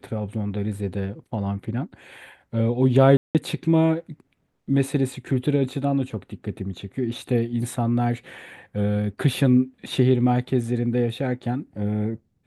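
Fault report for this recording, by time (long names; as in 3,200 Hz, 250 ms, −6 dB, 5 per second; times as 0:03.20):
0:03.17–0:03.35: drop-out 178 ms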